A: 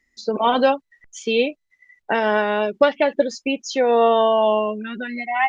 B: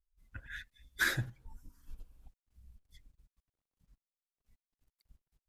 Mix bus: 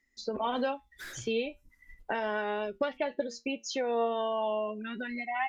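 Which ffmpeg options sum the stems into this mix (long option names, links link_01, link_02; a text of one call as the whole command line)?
ffmpeg -i stem1.wav -i stem2.wav -filter_complex "[0:a]flanger=delay=7.2:depth=1.8:regen=74:speed=0.4:shape=triangular,volume=-2dB[link_01];[1:a]asoftclip=type=tanh:threshold=-33dB,volume=-7.5dB[link_02];[link_01][link_02]amix=inputs=2:normalize=0,acompressor=threshold=-33dB:ratio=2" out.wav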